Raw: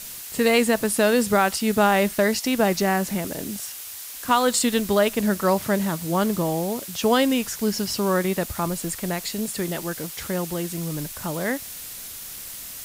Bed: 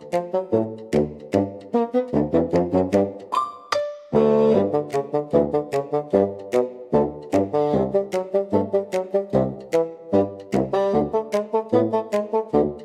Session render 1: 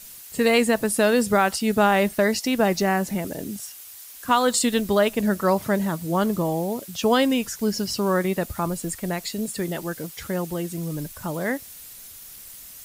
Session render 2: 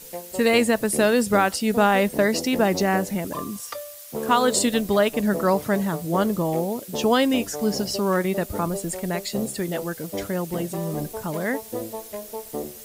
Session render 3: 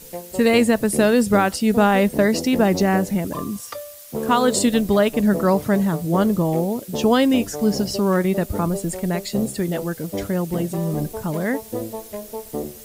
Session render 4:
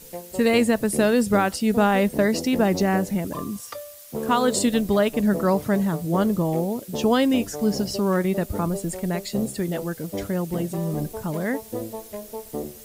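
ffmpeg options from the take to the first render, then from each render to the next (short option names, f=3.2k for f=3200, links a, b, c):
-af "afftdn=nr=8:nf=-37"
-filter_complex "[1:a]volume=-12.5dB[a];[0:a][a]amix=inputs=2:normalize=0"
-af "lowshelf=f=320:g=7.5"
-af "volume=-3dB"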